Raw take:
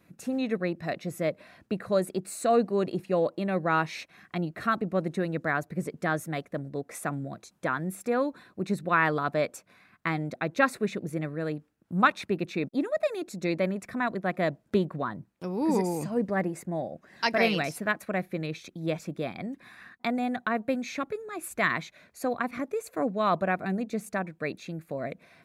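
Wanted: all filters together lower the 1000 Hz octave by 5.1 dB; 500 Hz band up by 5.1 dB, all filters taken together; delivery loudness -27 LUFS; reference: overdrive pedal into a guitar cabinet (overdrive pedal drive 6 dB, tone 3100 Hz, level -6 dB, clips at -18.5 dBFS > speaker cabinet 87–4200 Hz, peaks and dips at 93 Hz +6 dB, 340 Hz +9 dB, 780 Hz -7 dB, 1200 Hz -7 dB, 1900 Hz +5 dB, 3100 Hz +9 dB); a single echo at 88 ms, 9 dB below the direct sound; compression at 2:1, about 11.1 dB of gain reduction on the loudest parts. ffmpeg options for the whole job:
-filter_complex "[0:a]equalizer=f=500:t=o:g=5.5,equalizer=f=1k:t=o:g=-3,acompressor=threshold=-37dB:ratio=2,aecho=1:1:88:0.355,asplit=2[a][b];[b]highpass=f=720:p=1,volume=6dB,asoftclip=type=tanh:threshold=-18.5dB[c];[a][c]amix=inputs=2:normalize=0,lowpass=f=3.1k:p=1,volume=-6dB,highpass=87,equalizer=f=93:t=q:w=4:g=6,equalizer=f=340:t=q:w=4:g=9,equalizer=f=780:t=q:w=4:g=-7,equalizer=f=1.2k:t=q:w=4:g=-7,equalizer=f=1.9k:t=q:w=4:g=5,equalizer=f=3.1k:t=q:w=4:g=9,lowpass=f=4.2k:w=0.5412,lowpass=f=4.2k:w=1.3066,volume=8.5dB"

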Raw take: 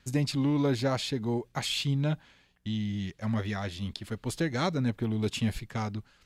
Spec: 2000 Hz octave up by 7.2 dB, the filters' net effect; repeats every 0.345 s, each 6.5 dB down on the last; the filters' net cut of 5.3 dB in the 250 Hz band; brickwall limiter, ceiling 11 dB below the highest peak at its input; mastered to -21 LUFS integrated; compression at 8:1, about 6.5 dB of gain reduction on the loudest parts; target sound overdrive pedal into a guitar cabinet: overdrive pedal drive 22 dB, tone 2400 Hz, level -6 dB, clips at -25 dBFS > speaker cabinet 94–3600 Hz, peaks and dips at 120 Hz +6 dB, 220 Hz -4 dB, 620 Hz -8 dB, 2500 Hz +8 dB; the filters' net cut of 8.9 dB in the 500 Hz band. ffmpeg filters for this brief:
-filter_complex "[0:a]equalizer=f=250:t=o:g=-3,equalizer=f=500:t=o:g=-8,equalizer=f=2k:t=o:g=5.5,acompressor=threshold=-32dB:ratio=8,alimiter=level_in=6dB:limit=-24dB:level=0:latency=1,volume=-6dB,aecho=1:1:345|690|1035|1380|1725|2070:0.473|0.222|0.105|0.0491|0.0231|0.0109,asplit=2[a][b];[b]highpass=f=720:p=1,volume=22dB,asoftclip=type=tanh:threshold=-25dB[c];[a][c]amix=inputs=2:normalize=0,lowpass=f=2.4k:p=1,volume=-6dB,highpass=94,equalizer=f=120:t=q:w=4:g=6,equalizer=f=220:t=q:w=4:g=-4,equalizer=f=620:t=q:w=4:g=-8,equalizer=f=2.5k:t=q:w=4:g=8,lowpass=f=3.6k:w=0.5412,lowpass=f=3.6k:w=1.3066,volume=12dB"

